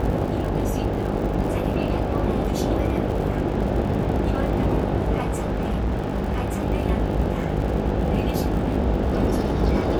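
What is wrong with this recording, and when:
mains buzz 50 Hz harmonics 17 −27 dBFS
surface crackle 91 per second −31 dBFS
0:05.20–0:06.62: clipping −19.5 dBFS

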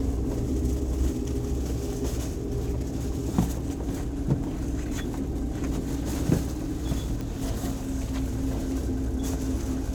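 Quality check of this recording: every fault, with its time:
0:07.21: click −21 dBFS

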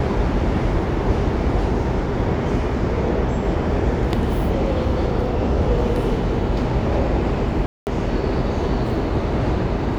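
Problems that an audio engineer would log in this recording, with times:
0:07.66–0:07.87: drop-out 209 ms

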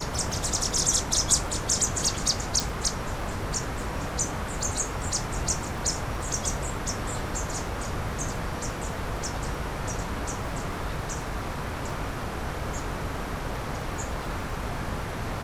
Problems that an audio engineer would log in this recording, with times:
surface crackle 36 per second −36 dBFS
0:02.60: click

